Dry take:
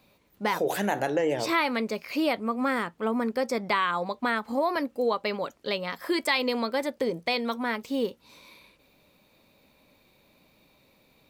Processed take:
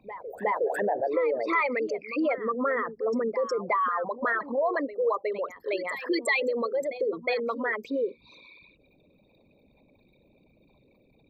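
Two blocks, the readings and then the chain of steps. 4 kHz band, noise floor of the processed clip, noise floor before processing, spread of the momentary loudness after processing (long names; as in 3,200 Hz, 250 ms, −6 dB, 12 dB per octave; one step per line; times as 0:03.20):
−10.0 dB, −63 dBFS, −64 dBFS, 6 LU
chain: spectral envelope exaggerated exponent 3
backwards echo 364 ms −13 dB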